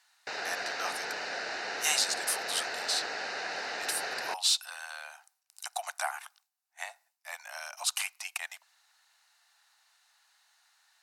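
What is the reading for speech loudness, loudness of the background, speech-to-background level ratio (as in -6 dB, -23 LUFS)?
-33.5 LUFS, -35.5 LUFS, 2.0 dB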